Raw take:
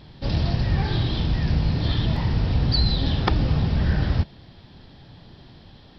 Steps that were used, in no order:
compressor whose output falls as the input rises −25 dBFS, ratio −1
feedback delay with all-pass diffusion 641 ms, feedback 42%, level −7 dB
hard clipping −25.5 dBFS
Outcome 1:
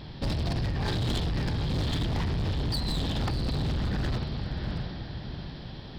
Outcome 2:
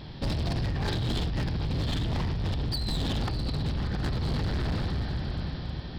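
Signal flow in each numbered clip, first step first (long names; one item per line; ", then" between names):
compressor whose output falls as the input rises, then feedback delay with all-pass diffusion, then hard clipping
feedback delay with all-pass diffusion, then compressor whose output falls as the input rises, then hard clipping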